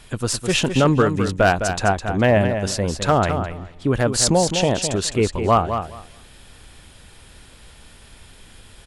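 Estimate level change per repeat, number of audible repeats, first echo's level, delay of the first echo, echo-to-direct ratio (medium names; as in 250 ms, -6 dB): -15.5 dB, 2, -8.0 dB, 209 ms, -8.0 dB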